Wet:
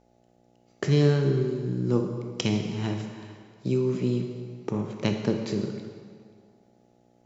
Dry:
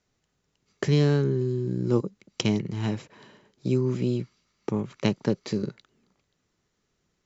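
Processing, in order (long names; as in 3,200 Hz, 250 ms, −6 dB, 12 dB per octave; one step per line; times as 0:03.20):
hum with harmonics 60 Hz, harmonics 14, −62 dBFS −1 dB per octave
on a send: convolution reverb RT60 2.0 s, pre-delay 18 ms, DRR 4 dB
on the sum: level −1.5 dB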